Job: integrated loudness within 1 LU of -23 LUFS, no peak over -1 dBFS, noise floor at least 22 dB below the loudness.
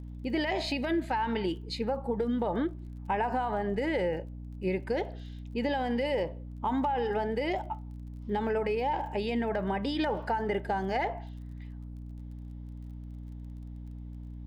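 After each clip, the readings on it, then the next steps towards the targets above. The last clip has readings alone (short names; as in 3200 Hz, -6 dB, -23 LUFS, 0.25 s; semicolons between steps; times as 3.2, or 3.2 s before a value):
ticks 28/s; hum 60 Hz; harmonics up to 300 Hz; hum level -39 dBFS; loudness -31.5 LUFS; peak -19.0 dBFS; loudness target -23.0 LUFS
-> de-click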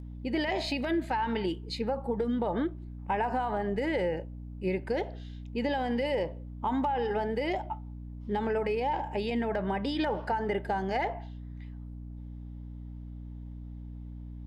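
ticks 0.14/s; hum 60 Hz; harmonics up to 300 Hz; hum level -39 dBFS
-> de-hum 60 Hz, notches 5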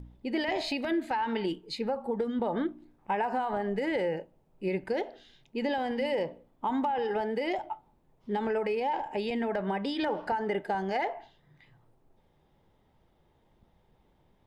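hum none; loudness -32.0 LUFS; peak -19.0 dBFS; loudness target -23.0 LUFS
-> gain +9 dB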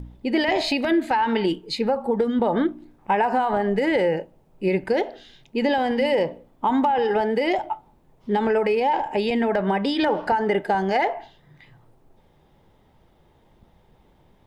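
loudness -22.5 LUFS; peak -10.0 dBFS; noise floor -59 dBFS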